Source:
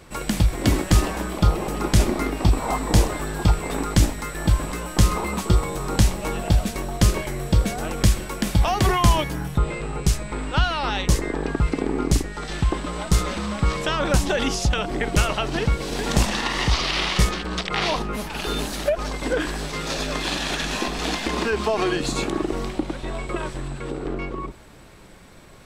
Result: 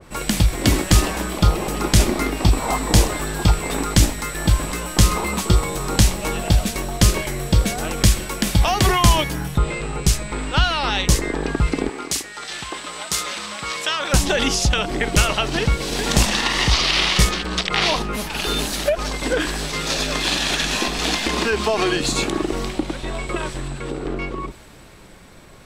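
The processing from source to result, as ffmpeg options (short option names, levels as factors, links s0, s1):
-filter_complex "[0:a]asettb=1/sr,asplit=3[s0][s1][s2];[s0]atrim=end=11.894[s3];[s1]atrim=start=11.89:end=14.13,asetpts=PTS-STARTPTS,afade=t=in:d=0.004:c=qsin,afade=t=out:st=2.236:d=0.004:c=qsin,highpass=f=1100:p=1[s4];[s2]atrim=start=14.126[s5];[s3][s4]acrossfade=d=0.004:c1=hsin:c2=qsin[s6];[s6][s5]acrossfade=d=0.004:c1=qsin:c2=hsin,adynamicequalizer=threshold=0.0112:dfrequency=1900:dqfactor=0.7:tfrequency=1900:tqfactor=0.7:attack=5:release=100:ratio=0.375:range=2.5:mode=boostabove:tftype=highshelf,volume=1.26"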